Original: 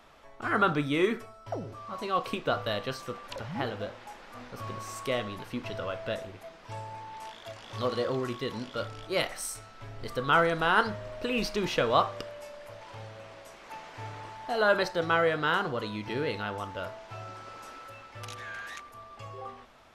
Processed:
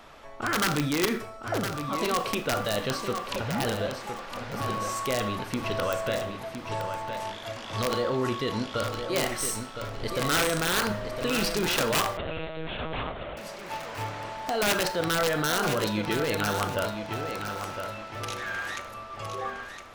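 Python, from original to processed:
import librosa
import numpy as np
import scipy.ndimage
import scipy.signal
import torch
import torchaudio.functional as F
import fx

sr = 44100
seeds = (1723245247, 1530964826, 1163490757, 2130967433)

p1 = fx.tracing_dist(x, sr, depth_ms=0.024)
p2 = fx.over_compress(p1, sr, threshold_db=-34.0, ratio=-1.0)
p3 = p1 + (p2 * librosa.db_to_amplitude(1.0))
p4 = (np.mod(10.0 ** (16.0 / 20.0) * p3 + 1.0, 2.0) - 1.0) / 10.0 ** (16.0 / 20.0)
p5 = p4 + fx.echo_feedback(p4, sr, ms=1012, feedback_pct=29, wet_db=-8.0, dry=0)
p6 = fx.rev_schroeder(p5, sr, rt60_s=0.46, comb_ms=27, drr_db=12.5)
p7 = fx.lpc_monotone(p6, sr, seeds[0], pitch_hz=160.0, order=10, at=(12.17, 13.37))
y = p7 * librosa.db_to_amplitude(-2.0)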